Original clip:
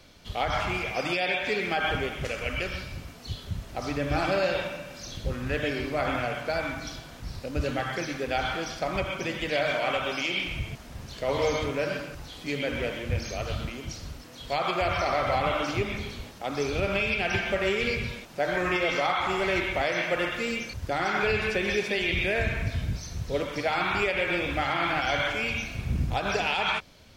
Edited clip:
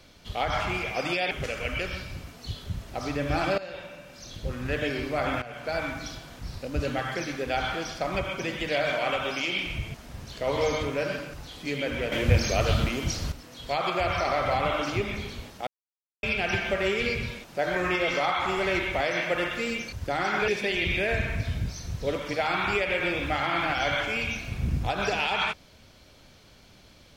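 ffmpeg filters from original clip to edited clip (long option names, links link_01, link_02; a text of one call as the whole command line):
ffmpeg -i in.wav -filter_complex "[0:a]asplit=9[link_01][link_02][link_03][link_04][link_05][link_06][link_07][link_08][link_09];[link_01]atrim=end=1.312[link_10];[link_02]atrim=start=2.118:end=4.39,asetpts=PTS-STARTPTS,afade=type=out:start_time=2.268:duration=0.004:curve=hsin:silence=0.16788[link_11];[link_03]atrim=start=4.39:end=6.23,asetpts=PTS-STARTPTS,afade=type=in:duration=1.16:silence=0.16788,afade=type=out:start_time=1.836:duration=0.004:curve=hsin:silence=0.16788[link_12];[link_04]atrim=start=6.23:end=12.932,asetpts=PTS-STARTPTS,afade=type=in:duration=0.36:silence=0.16788[link_13];[link_05]atrim=start=12.928:end=14.132,asetpts=PTS-STARTPTS,volume=8dB[link_14];[link_06]atrim=start=14.128:end=16.48,asetpts=PTS-STARTPTS,afade=type=out:start_time=2.348:duration=0.004:curve=hsin[link_15];[link_07]atrim=start=16.48:end=17.04,asetpts=PTS-STARTPTS,volume=0[link_16];[link_08]atrim=start=17.04:end=21.292,asetpts=PTS-STARTPTS,afade=type=in:duration=0.004:curve=hsin[link_17];[link_09]atrim=start=21.748[link_18];[link_11][link_12][link_13]concat=n=3:v=0:a=1[link_19];[link_10][link_19]acrossfade=duration=0.004:curve1=hsin:curve2=hsin[link_20];[link_20][link_14]acrossfade=duration=0.004:curve1=hsin:curve2=hsin[link_21];[link_15][link_16][link_17]concat=n=3:v=0:a=1[link_22];[link_21][link_22]acrossfade=duration=0.004:curve1=hsin:curve2=hsin[link_23];[link_23][link_18]acrossfade=duration=0.004:curve1=hsin:curve2=hsin" out.wav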